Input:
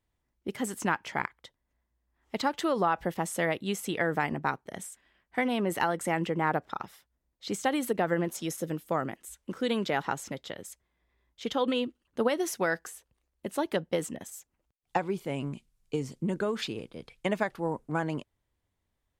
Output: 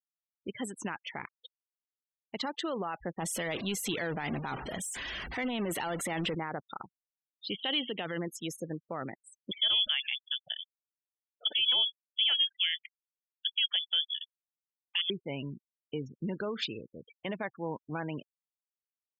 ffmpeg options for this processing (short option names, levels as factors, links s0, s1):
-filter_complex "[0:a]asettb=1/sr,asplit=3[s0][s1][s2];[s0]atrim=end=3.204[s3];[s1]atrim=start=3.2:end=6.35,asetpts=PTS-STARTPTS,afade=t=in:d=0.004:c=qsin,afade=t=out:st=3.146:d=0.004:c=qsin,aeval=exprs='val(0)+0.5*0.0299*sgn(val(0))':c=same[s4];[s2]atrim=start=6.346[s5];[s3][s4]acrossfade=d=0.004:c1=hsin:c2=qsin[s6];[s6][s5]acrossfade=d=0.004:c1=qsin:c2=hsin,asplit=3[s7][s8][s9];[s7]afade=t=out:st=7.49:d=0.02[s10];[s8]lowpass=f=3100:t=q:w=6.3,afade=t=in:st=7.49:d=0.02,afade=t=out:st=8.16:d=0.02[s11];[s9]afade=t=in:st=8.16:d=0.02[s12];[s10][s11][s12]amix=inputs=3:normalize=0,asettb=1/sr,asplit=3[s13][s14][s15];[s13]atrim=end=9.514[s16];[s14]atrim=start=9.51:end=15.1,asetpts=PTS-STARTPTS,afade=t=in:d=0.004:c=qsin,afade=t=out:st=5.586:d=0.004:c=qsin,lowpass=f=3100:t=q:w=0.5098,lowpass=f=3100:t=q:w=0.6013,lowpass=f=3100:t=q:w=0.9,lowpass=f=3100:t=q:w=2.563,afreqshift=-3600[s17];[s15]atrim=start=15.096[s18];[s16][s17]acrossfade=d=0.004:c1=hsin:c2=qsin[s19];[s19][s18]acrossfade=d=0.004:c1=qsin:c2=hsin,afftfilt=real='re*gte(hypot(re,im),0.0141)':imag='im*gte(hypot(re,im),0.0141)':win_size=1024:overlap=0.75,alimiter=limit=0.0794:level=0:latency=1:release=14,equalizer=f=3200:w=1.3:g=7.5,volume=0.596"